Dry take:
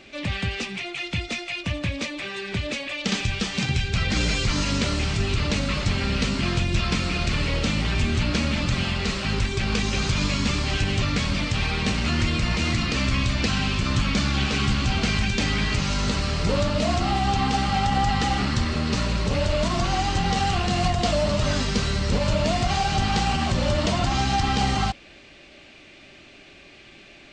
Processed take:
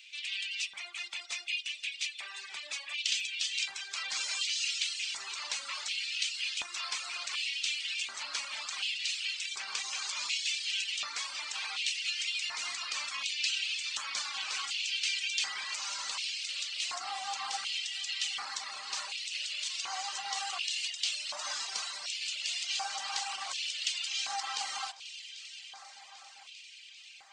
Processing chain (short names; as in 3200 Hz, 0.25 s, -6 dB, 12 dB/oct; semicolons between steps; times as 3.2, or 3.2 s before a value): pre-emphasis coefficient 0.9; echo with dull and thin repeats by turns 0.198 s, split 1600 Hz, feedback 89%, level -13 dB; LFO high-pass square 0.68 Hz 940–2700 Hz; reverb removal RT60 0.94 s